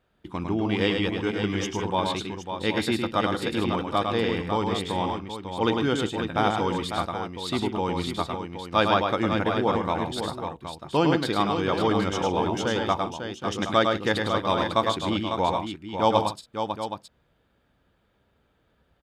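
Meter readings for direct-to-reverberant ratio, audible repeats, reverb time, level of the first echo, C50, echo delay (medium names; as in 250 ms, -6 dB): no reverb, 4, no reverb, -5.0 dB, no reverb, 104 ms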